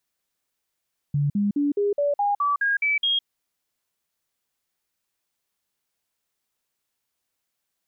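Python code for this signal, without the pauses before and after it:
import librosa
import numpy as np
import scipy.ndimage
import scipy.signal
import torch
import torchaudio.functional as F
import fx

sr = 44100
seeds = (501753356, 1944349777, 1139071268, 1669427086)

y = fx.stepped_sweep(sr, from_hz=144.0, direction='up', per_octave=2, tones=10, dwell_s=0.16, gap_s=0.05, level_db=-19.0)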